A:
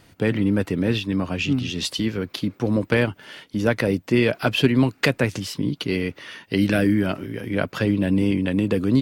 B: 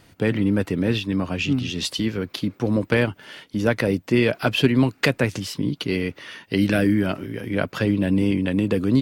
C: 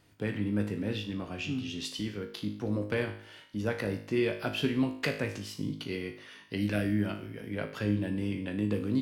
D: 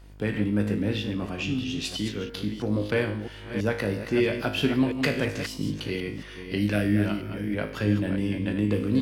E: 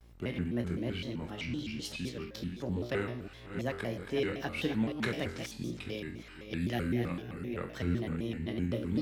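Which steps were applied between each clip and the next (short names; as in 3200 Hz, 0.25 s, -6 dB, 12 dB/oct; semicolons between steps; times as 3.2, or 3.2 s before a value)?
nothing audible
resonator 52 Hz, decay 0.56 s, harmonics all, mix 80%; gain -3.5 dB
reverse delay 0.328 s, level -8 dB; buzz 50 Hz, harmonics 34, -53 dBFS -8 dB/oct; gain +5 dB
shaped vibrato square 3.9 Hz, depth 250 cents; gain -8.5 dB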